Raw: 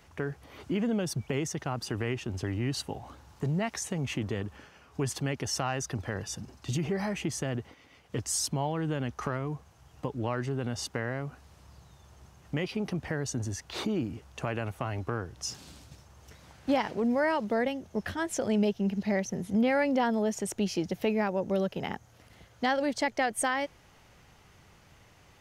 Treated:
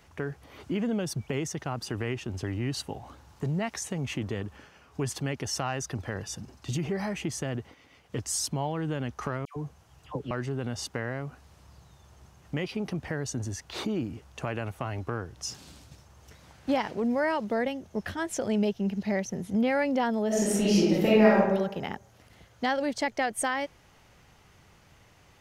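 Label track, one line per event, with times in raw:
9.450000	10.310000	dispersion lows, late by 0.111 s, half as late at 1300 Hz
20.270000	21.370000	reverb throw, RT60 0.95 s, DRR -7.5 dB

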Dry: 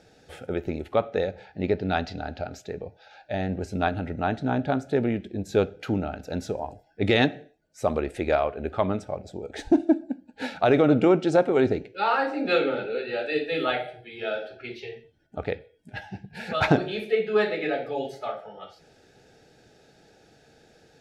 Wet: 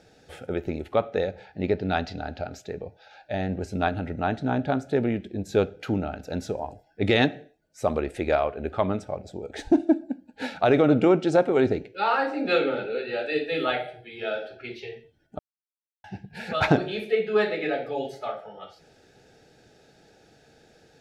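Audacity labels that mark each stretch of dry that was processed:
15.390000	16.040000	mute

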